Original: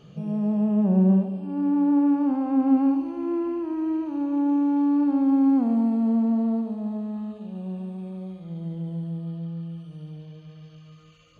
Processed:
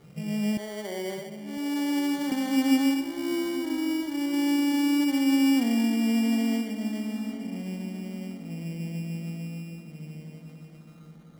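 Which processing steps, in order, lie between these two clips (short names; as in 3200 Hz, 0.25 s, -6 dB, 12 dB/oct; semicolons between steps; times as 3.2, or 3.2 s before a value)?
0.57–2.32 steep high-pass 300 Hz 36 dB/oct; sample-and-hold 17×; darkening echo 1.002 s, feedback 50%, low-pass 1800 Hz, level -13 dB; gain -2.5 dB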